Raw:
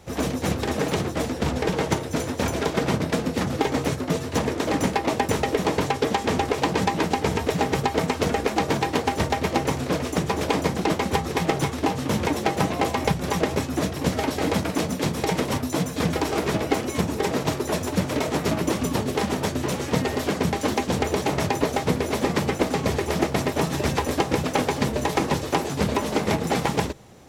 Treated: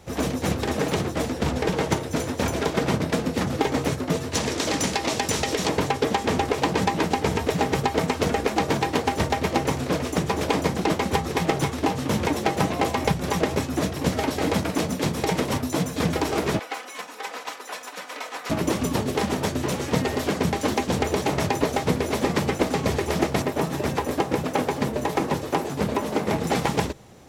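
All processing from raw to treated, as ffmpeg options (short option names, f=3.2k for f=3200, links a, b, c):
-filter_complex "[0:a]asettb=1/sr,asplit=3[a][b][c];[a]atrim=end=4.334[d];[b]atrim=start=4.33:end=5.69,asetpts=PTS-STARTPTS,afade=t=in:d=0.004:c=qsin,afade=t=out:st=1.356:d=0.004:c=qsin,equalizer=f=5.7k:t=o:w=2.4:g=11.5,acompressor=threshold=-22dB:ratio=2:attack=3.2:release=140:knee=1:detection=peak[e];[c]atrim=start=5.686[f];[d][e]acrossfade=d=0.004:c1=hsin:c2=qsin[g];[g][f]acrossfade=d=0.004:c1=qsin:c2=hsin,asettb=1/sr,asplit=3[h][i][j];[h]atrim=end=16.594[k];[i]atrim=start=16.59:end=18.5,asetpts=PTS-STARTPTS,afade=t=in:d=0.004:c=qsin,afade=t=out:st=1.906:d=0.004:c=qsin,highpass=1.1k,highshelf=f=2.8k:g=-8.5,aecho=1:1:4:0.5,atrim=end_sample=84231[l];[j]atrim=start=18.496[m];[k][l]acrossfade=d=0.004:c1=hsin:c2=qsin[n];[n][m]acrossfade=d=0.004:c1=qsin:c2=hsin,asettb=1/sr,asplit=3[o][p][q];[o]atrim=end=23.424[r];[p]atrim=start=23.42:end=26.36,asetpts=PTS-STARTPTS,afade=t=in:d=0.004:c=qsin,afade=t=out:st=2.936:d=0.004:c=qsin,highpass=f=120:p=1,equalizer=f=5.1k:w=0.4:g=-5.5[s];[q]atrim=start=26.356[t];[r][s]acrossfade=d=0.004:c1=hsin:c2=qsin[u];[u][t]acrossfade=d=0.004:c1=qsin:c2=hsin"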